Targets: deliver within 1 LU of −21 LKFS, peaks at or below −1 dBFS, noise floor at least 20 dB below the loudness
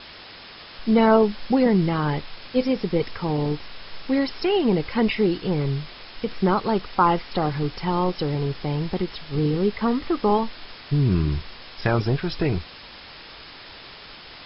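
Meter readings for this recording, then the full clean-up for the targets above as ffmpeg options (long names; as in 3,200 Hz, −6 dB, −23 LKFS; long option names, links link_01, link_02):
background noise floor −43 dBFS; target noise floor −44 dBFS; integrated loudness −23.5 LKFS; sample peak −5.0 dBFS; target loudness −21.0 LKFS
→ -af "afftdn=noise_reduction=6:noise_floor=-43"
-af "volume=2.5dB"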